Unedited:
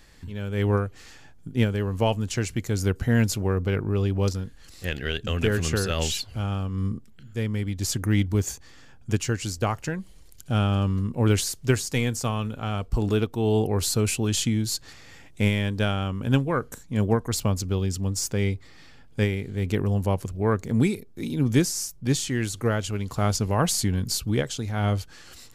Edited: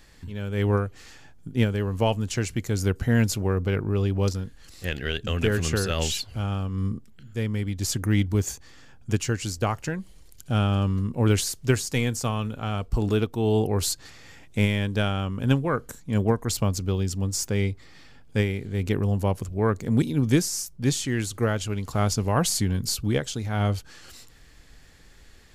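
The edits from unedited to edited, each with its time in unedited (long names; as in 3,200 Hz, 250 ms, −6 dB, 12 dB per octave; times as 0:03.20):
0:13.92–0:14.75: remove
0:20.85–0:21.25: remove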